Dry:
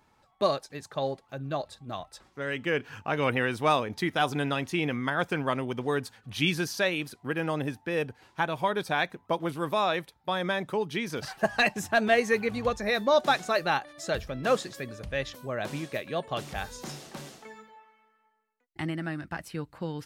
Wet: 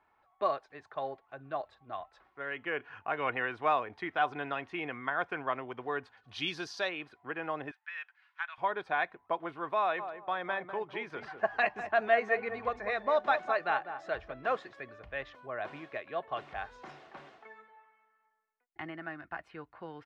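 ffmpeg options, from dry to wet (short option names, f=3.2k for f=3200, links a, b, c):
-filter_complex "[0:a]asettb=1/sr,asplit=3[a][b][c];[a]atrim=end=6.174[d];[b]atrim=start=6.17:end=6.89,asetpts=PTS-STARTPTS,afade=t=in:d=0.004:c=qsin,afade=t=out:st=0.716:d=0.004:c=qsin,highshelf=f=3.2k:t=q:w=1.5:g=11.5[e];[c]atrim=start=6.886[f];[d][e]acrossfade=d=0.004:c1=hsin:c2=qsin[g];[g][f]acrossfade=d=0.004:c1=qsin:c2=hsin,asettb=1/sr,asplit=3[h][i][j];[h]atrim=end=7.714[k];[i]atrim=start=7.71:end=8.58,asetpts=PTS-STARTPTS,afade=t=in:d=0.004:c=qsin,afade=t=out:st=0.866:d=0.004:c=qsin,highpass=f=1.4k:w=0.5412,highpass=f=1.4k:w=1.3066[l];[j]atrim=start=8.576[m];[k][l]acrossfade=d=0.004:c1=hsin:c2=qsin[n];[n][m]acrossfade=d=0.004:c1=qsin:c2=hsin,asplit=3[o][p][q];[o]afade=t=out:st=9.98:d=0.02[r];[p]asplit=2[s][t];[t]adelay=200,lowpass=f=960:p=1,volume=-7.5dB,asplit=2[u][v];[v]adelay=200,lowpass=f=960:p=1,volume=0.31,asplit=2[w][x];[x]adelay=200,lowpass=f=960:p=1,volume=0.31,asplit=2[y][z];[z]adelay=200,lowpass=f=960:p=1,volume=0.31[aa];[s][u][w][y][aa]amix=inputs=5:normalize=0,afade=t=in:st=9.98:d=0.02,afade=t=out:st=14.32:d=0.02[ab];[q]afade=t=in:st=14.32:d=0.02[ac];[r][ab][ac]amix=inputs=3:normalize=0,lowpass=3.7k,acrossover=split=540 2500:gain=0.224 1 0.178[ad][ae][af];[ad][ae][af]amix=inputs=3:normalize=0,aecho=1:1:2.8:0.3,volume=-2dB"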